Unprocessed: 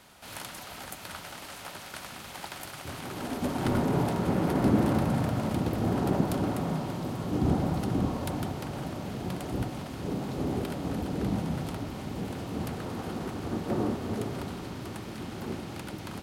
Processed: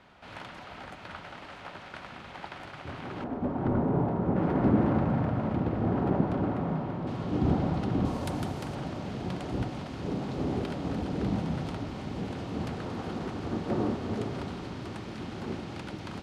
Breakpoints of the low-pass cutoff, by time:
2.7 kHz
from 3.24 s 1.1 kHz
from 4.36 s 1.9 kHz
from 7.07 s 4 kHz
from 8.05 s 9.2 kHz
from 8.75 s 5.5 kHz

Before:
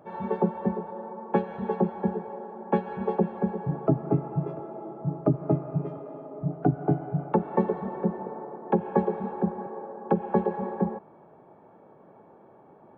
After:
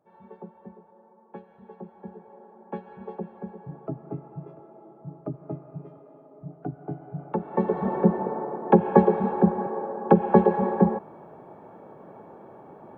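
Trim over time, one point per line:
1.71 s -18 dB
2.43 s -10.5 dB
6.88 s -10.5 dB
7.52 s -2.5 dB
7.87 s +7 dB

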